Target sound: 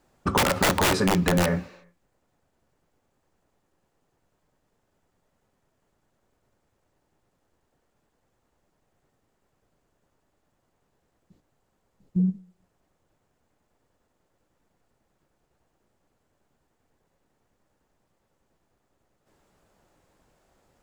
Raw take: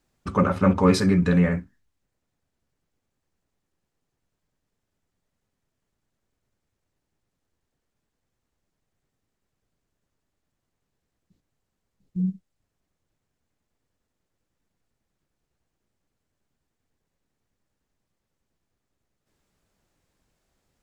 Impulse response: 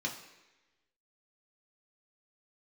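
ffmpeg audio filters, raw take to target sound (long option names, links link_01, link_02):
-filter_complex "[0:a]equalizer=frequency=710:width=0.51:gain=8,aeval=exprs='(mod(2.99*val(0)+1,2)-1)/2.99':channel_layout=same,asplit=2[link_01][link_02];[1:a]atrim=start_sample=2205,afade=type=out:start_time=0.43:duration=0.01,atrim=end_sample=19404,lowshelf=frequency=390:gain=-11[link_03];[link_02][link_03]afir=irnorm=-1:irlink=0,volume=-16.5dB[link_04];[link_01][link_04]amix=inputs=2:normalize=0,acompressor=threshold=-24dB:ratio=6,volume=4.5dB"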